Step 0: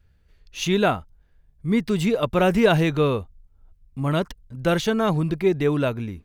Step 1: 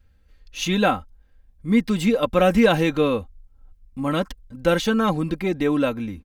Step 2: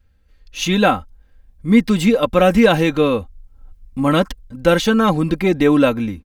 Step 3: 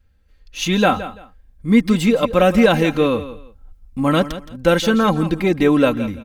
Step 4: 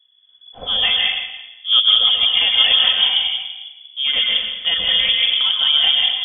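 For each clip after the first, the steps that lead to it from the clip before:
comb filter 3.8 ms, depth 64%
automatic gain control gain up to 10 dB
repeating echo 169 ms, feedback 22%, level −14 dB; level −1 dB
sub-octave generator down 1 octave, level +4 dB; dense smooth reverb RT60 1.1 s, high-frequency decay 0.8×, pre-delay 115 ms, DRR −0.5 dB; voice inversion scrambler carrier 3,400 Hz; level −7 dB

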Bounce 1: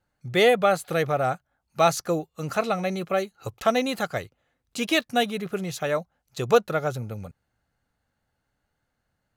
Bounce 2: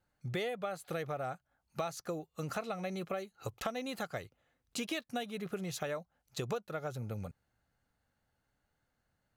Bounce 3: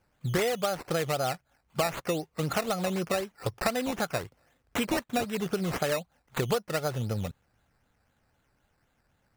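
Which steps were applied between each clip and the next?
downward compressor 8 to 1, threshold −31 dBFS, peak gain reduction 18 dB; level −3.5 dB
sample-and-hold swept by an LFO 11×, swing 60% 3.9 Hz; level +9 dB

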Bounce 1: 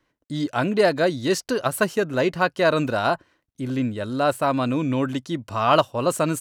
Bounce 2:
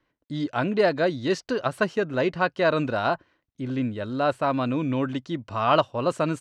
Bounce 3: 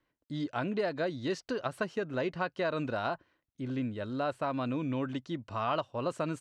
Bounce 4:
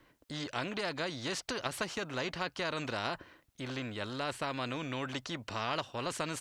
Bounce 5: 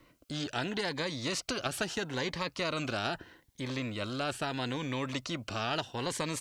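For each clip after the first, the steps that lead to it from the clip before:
low-pass filter 4,400 Hz 12 dB per octave; level −2.5 dB
downward compressor 3 to 1, threshold −23 dBFS, peak gain reduction 7 dB; level −6 dB
every bin compressed towards the loudest bin 2 to 1
phaser whose notches keep moving one way rising 0.77 Hz; level +4 dB

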